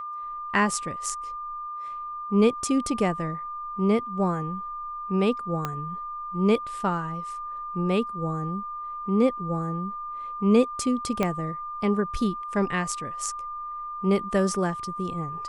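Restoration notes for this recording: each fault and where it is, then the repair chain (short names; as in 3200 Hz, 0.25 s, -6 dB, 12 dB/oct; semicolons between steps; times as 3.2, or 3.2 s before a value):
tone 1200 Hz -32 dBFS
5.65 pop -14 dBFS
11.23 pop -11 dBFS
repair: de-click; notch 1200 Hz, Q 30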